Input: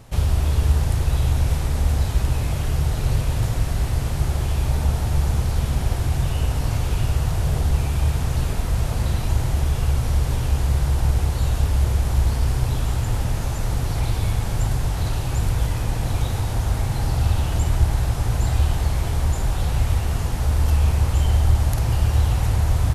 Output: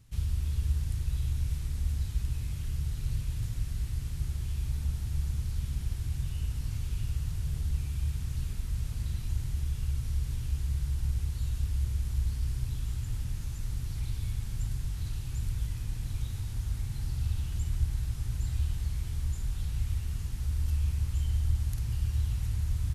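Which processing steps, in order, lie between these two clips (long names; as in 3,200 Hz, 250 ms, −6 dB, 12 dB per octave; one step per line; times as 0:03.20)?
guitar amp tone stack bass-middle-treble 6-0-2
level +1.5 dB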